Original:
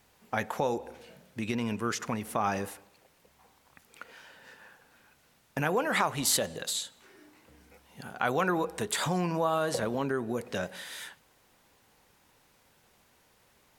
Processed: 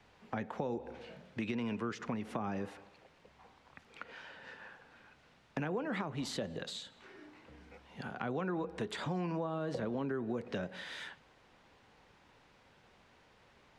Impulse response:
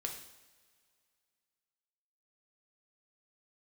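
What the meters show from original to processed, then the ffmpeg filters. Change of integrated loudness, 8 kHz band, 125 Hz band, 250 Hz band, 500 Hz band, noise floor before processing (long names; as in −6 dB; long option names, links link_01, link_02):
−8.5 dB, −20.0 dB, −5.0 dB, −4.0 dB, −7.5 dB, −66 dBFS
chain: -filter_complex "[0:a]lowpass=3800,acrossover=split=180|360[link_01][link_02][link_03];[link_01]acompressor=threshold=-50dB:ratio=4[link_04];[link_02]acompressor=threshold=-40dB:ratio=4[link_05];[link_03]acompressor=threshold=-44dB:ratio=4[link_06];[link_04][link_05][link_06]amix=inputs=3:normalize=0,volume=2dB"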